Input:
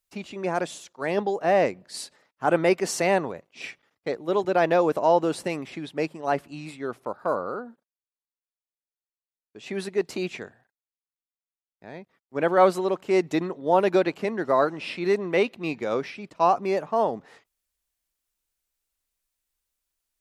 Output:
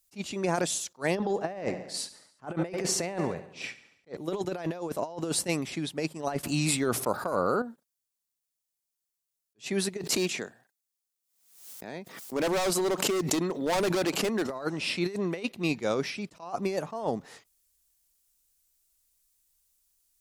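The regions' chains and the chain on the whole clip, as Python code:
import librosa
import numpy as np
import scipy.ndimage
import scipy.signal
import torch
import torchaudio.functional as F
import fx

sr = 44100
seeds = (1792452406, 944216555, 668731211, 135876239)

y = fx.chain(x, sr, fx.lowpass(hz=2600.0, slope=6),
    fx.echo_feedback(ms=70, feedback_pct=57, wet_db=-16.0), at=(1.15, 4.17))
y = fx.chain(y, sr, fx.high_shelf(hz=8000.0, db=5.5),
    fx.env_flatten(amount_pct=50), at=(6.43, 7.62))
y = fx.chain(y, sr, fx.highpass(hz=190.0, slope=12),
    fx.overload_stage(gain_db=24.0),
    fx.pre_swell(db_per_s=82.0), at=(10.03, 14.5))
y = fx.bass_treble(y, sr, bass_db=5, treble_db=12)
y = fx.over_compress(y, sr, threshold_db=-25.0, ratio=-0.5)
y = fx.attack_slew(y, sr, db_per_s=370.0)
y = F.gain(torch.from_numpy(y), -2.5).numpy()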